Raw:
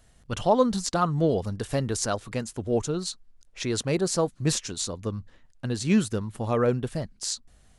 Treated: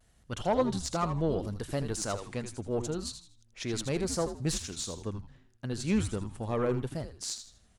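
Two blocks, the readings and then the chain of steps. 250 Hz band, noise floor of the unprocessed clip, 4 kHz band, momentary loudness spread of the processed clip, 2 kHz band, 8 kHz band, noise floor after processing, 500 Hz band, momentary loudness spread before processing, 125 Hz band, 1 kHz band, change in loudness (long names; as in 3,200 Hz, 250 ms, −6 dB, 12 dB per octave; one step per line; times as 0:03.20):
−6.0 dB, −59 dBFS, −5.5 dB, 10 LU, −5.5 dB, −5.5 dB, −64 dBFS, −6.0 dB, 11 LU, −5.5 dB, −6.5 dB, −6.0 dB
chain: tube saturation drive 13 dB, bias 0.35
pitch vibrato 0.76 Hz 40 cents
echo with shifted repeats 80 ms, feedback 32%, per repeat −120 Hz, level −9 dB
level −5 dB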